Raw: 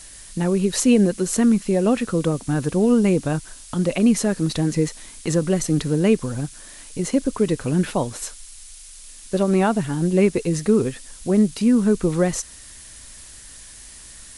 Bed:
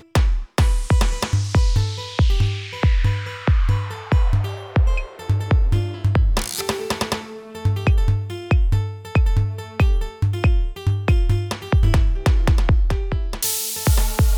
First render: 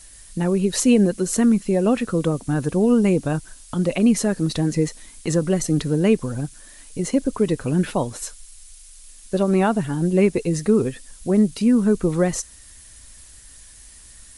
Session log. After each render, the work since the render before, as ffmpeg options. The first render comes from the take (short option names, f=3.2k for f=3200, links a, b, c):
-af "afftdn=nr=6:nf=-42"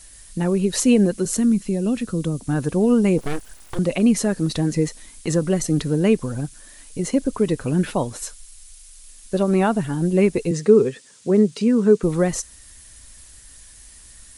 -filter_complex "[0:a]asettb=1/sr,asplit=3[a][b][c];[a]atrim=end=1.254[d];[b]atrim=start=1.25:end=2.47,asetpts=PTS-STARTPTS,afade=t=in:d=0.004:c=qsin,afade=t=out:st=1.216:d=0.004:c=qsin,acrossover=split=340|3000[e][f][g];[f]acompressor=threshold=-43dB:ratio=2:attack=3.2:release=140:knee=2.83:detection=peak[h];[e][h][g]amix=inputs=3:normalize=0[i];[c]atrim=start=2.466[j];[d][i]acrossfade=d=0.004:c1=hsin:c2=qsin[k];[k][j]acrossfade=d=0.004:c1=qsin:c2=hsin,asettb=1/sr,asplit=3[l][m][n];[l]atrim=end=3.184[o];[m]atrim=start=3.18:end=3.79,asetpts=PTS-STARTPTS,afade=t=in:d=0.004:c=qsin,afade=t=out:st=0.606:d=0.004:c=qsin,aeval=exprs='abs(val(0))':c=same[p];[n]atrim=start=3.786[q];[o][p]acrossfade=d=0.004:c1=hsin:c2=qsin[r];[r][q]acrossfade=d=0.004:c1=qsin:c2=hsin,asettb=1/sr,asplit=3[s][t][u];[s]atrim=end=10.514[v];[t]atrim=start=10.51:end=12.03,asetpts=PTS-STARTPTS,afade=t=in:d=0.004:c=qsin,afade=t=out:st=1.516:d=0.004:c=qsin,highpass=f=130:w=0.5412,highpass=f=130:w=1.3066,equalizer=f=280:t=q:w=4:g=-4,equalizer=f=430:t=q:w=4:g=8,equalizer=f=710:t=q:w=4:g=-4,lowpass=f=8.3k:w=0.5412,lowpass=f=8.3k:w=1.3066[w];[u]atrim=start=12.026[x];[v][w]acrossfade=d=0.004:c1=hsin:c2=qsin[y];[y][x]acrossfade=d=0.004:c1=qsin:c2=hsin"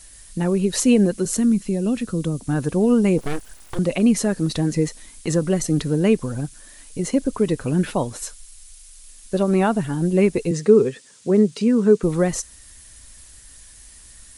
-af anull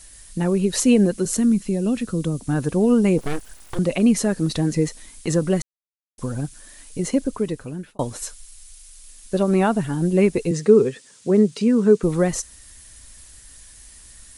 -filter_complex "[0:a]asplit=4[a][b][c][d];[a]atrim=end=5.62,asetpts=PTS-STARTPTS,afade=t=out:st=5.616:d=0.004:c=hsin[e];[b]atrim=start=5.62:end=6.18,asetpts=PTS-STARTPTS,volume=0[f];[c]atrim=start=6.18:end=7.99,asetpts=PTS-STARTPTS,afade=t=in:d=0.004:c=hsin,afade=t=out:st=0.93:d=0.88[g];[d]atrim=start=7.99,asetpts=PTS-STARTPTS,afade=t=in:d=0.004:c=hsin[h];[e][f][g][h]concat=n=4:v=0:a=1"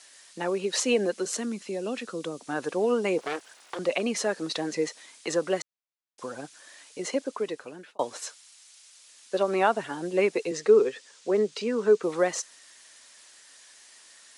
-filter_complex "[0:a]highpass=230,acrossover=split=400 7100:gain=0.158 1 0.112[a][b][c];[a][b][c]amix=inputs=3:normalize=0"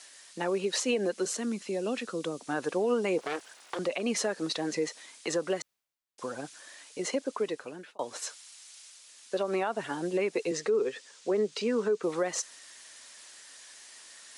-af "areverse,acompressor=mode=upward:threshold=-45dB:ratio=2.5,areverse,alimiter=limit=-20dB:level=0:latency=1:release=151"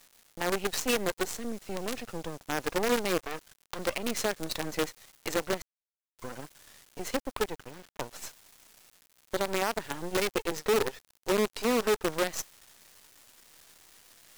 -af "aeval=exprs='sgn(val(0))*max(abs(val(0))-0.00133,0)':c=same,acrusher=bits=5:dc=4:mix=0:aa=0.000001"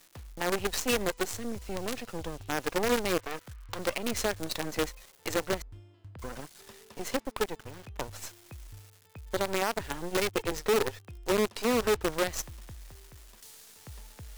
-filter_complex "[1:a]volume=-30dB[a];[0:a][a]amix=inputs=2:normalize=0"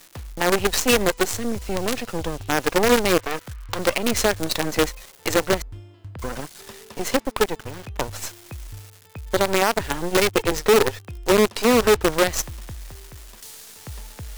-af "volume=10dB"